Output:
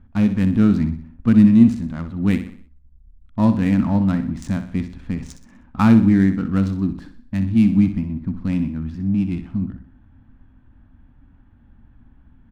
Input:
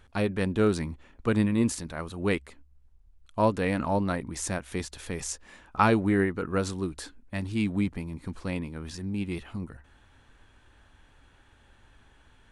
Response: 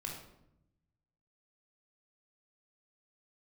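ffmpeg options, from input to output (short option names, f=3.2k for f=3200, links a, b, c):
-filter_complex "[0:a]lowshelf=f=320:t=q:w=3:g=8.5,adynamicsmooth=sensitivity=6:basefreq=1.3k,asplit=2[a][b];[b]aecho=0:1:62|124|186|248|310:0.299|0.134|0.0605|0.0272|0.0122[c];[a][c]amix=inputs=2:normalize=0"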